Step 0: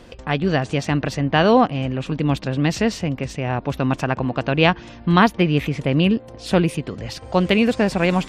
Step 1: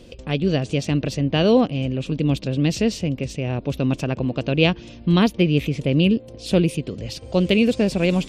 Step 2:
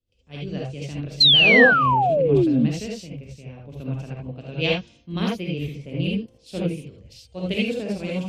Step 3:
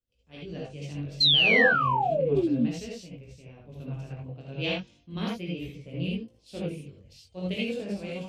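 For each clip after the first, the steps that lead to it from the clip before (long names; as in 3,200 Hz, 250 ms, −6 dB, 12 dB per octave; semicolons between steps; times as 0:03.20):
flat-topped bell 1,200 Hz −11 dB
reverb whose tail is shaped and stops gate 100 ms rising, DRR −2.5 dB; sound drawn into the spectrogram fall, 0:01.20–0:02.67, 210–4,300 Hz −10 dBFS; multiband upward and downward expander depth 100%; level −11 dB
chorus effect 0.34 Hz, delay 16.5 ms, depth 5.6 ms; level −3.5 dB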